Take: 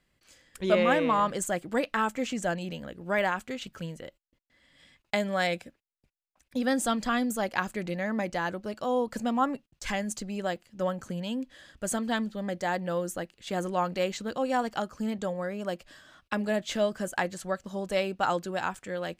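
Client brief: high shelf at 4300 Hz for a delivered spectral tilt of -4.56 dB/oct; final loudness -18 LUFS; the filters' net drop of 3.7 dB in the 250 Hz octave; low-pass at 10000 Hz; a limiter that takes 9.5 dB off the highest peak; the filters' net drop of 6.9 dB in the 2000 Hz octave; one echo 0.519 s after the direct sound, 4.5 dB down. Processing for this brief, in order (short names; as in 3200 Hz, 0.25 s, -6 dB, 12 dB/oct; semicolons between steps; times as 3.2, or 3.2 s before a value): LPF 10000 Hz; bell 250 Hz -4.5 dB; bell 2000 Hz -7.5 dB; high shelf 4300 Hz -8 dB; limiter -21.5 dBFS; echo 0.519 s -4.5 dB; gain +15 dB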